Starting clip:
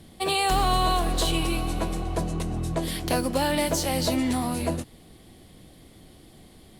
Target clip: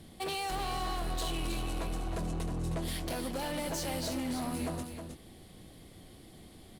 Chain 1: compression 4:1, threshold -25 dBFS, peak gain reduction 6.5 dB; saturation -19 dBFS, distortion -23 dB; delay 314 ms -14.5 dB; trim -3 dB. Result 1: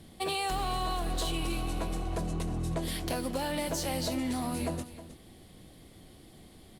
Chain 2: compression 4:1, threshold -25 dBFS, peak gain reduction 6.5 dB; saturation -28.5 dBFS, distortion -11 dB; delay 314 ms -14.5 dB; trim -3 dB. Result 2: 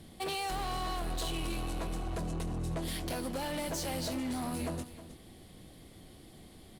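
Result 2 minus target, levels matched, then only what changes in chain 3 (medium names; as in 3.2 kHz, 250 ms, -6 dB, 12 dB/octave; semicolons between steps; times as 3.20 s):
echo-to-direct -7 dB
change: delay 314 ms -7.5 dB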